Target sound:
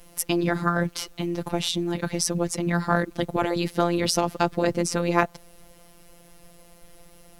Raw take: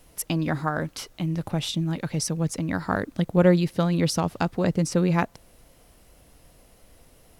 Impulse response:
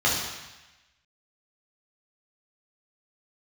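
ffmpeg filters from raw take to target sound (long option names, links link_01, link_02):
-af "afftfilt=real='hypot(re,im)*cos(PI*b)':imag='0':win_size=1024:overlap=0.75,afftfilt=real='re*lt(hypot(re,im),0.447)':imag='im*lt(hypot(re,im),0.447)':win_size=1024:overlap=0.75,volume=7dB"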